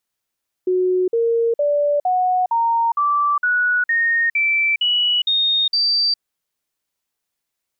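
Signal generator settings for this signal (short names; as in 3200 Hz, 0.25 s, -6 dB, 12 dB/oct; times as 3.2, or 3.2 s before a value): stepped sine 367 Hz up, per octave 3, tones 12, 0.41 s, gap 0.05 s -14.5 dBFS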